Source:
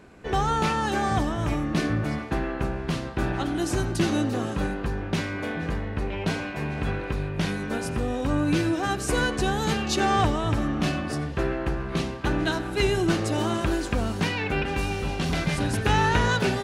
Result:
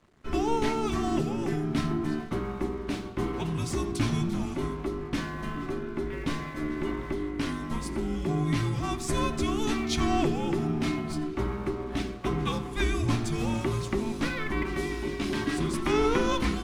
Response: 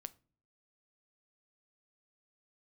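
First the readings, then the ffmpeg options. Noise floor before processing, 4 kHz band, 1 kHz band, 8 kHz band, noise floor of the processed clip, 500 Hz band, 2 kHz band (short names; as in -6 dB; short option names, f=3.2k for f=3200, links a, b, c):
-33 dBFS, -5.0 dB, -6.0 dB, -4.0 dB, -37 dBFS, -2.5 dB, -7.0 dB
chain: -filter_complex "[0:a]aeval=exprs='sgn(val(0))*max(abs(val(0))-0.00355,0)':c=same,afreqshift=-450[a];[1:a]atrim=start_sample=2205,asetrate=66150,aresample=44100[b];[a][b]afir=irnorm=-1:irlink=0,volume=5.5dB"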